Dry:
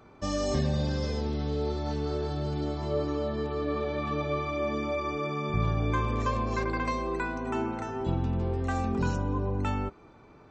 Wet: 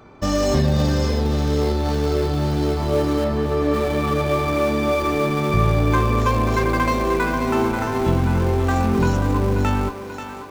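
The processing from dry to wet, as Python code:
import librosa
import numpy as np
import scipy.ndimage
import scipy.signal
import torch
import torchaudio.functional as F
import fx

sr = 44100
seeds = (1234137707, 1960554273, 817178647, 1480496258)

p1 = fx.schmitt(x, sr, flips_db=-32.5)
p2 = x + (p1 * 10.0 ** (-9.5 / 20.0))
p3 = fx.gaussian_blur(p2, sr, sigma=2.4, at=(3.24, 3.74))
p4 = fx.echo_thinned(p3, sr, ms=536, feedback_pct=66, hz=420.0, wet_db=-8.0)
y = p4 * 10.0 ** (8.0 / 20.0)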